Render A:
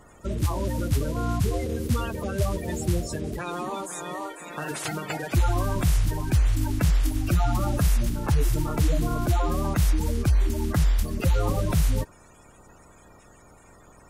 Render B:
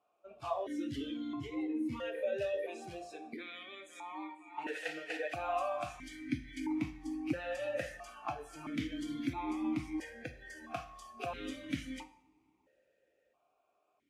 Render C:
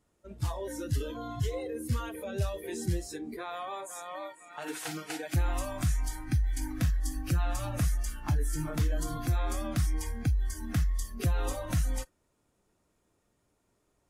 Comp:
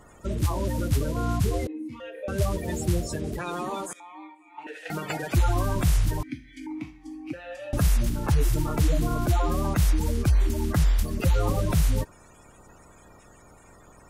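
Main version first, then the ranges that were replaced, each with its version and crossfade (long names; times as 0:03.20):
A
0:01.67–0:02.28: punch in from B
0:03.93–0:04.90: punch in from B
0:06.23–0:07.73: punch in from B
not used: C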